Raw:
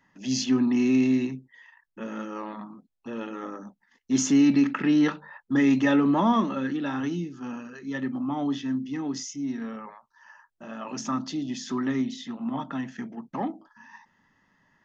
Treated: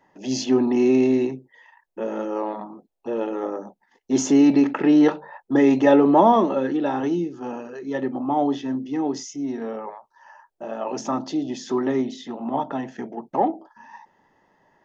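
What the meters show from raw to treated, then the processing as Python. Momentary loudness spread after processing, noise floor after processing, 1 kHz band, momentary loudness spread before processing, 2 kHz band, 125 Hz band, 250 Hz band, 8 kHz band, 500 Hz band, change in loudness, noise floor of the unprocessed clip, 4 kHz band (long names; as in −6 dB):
17 LU, −68 dBFS, +8.5 dB, 18 LU, 0.0 dB, 0.0 dB, +3.5 dB, can't be measured, +12.0 dB, +4.5 dB, −71 dBFS, 0.0 dB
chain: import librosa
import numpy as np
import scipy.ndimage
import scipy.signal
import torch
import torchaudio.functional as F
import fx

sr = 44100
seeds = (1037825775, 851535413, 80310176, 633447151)

y = fx.band_shelf(x, sr, hz=550.0, db=12.5, octaves=1.7)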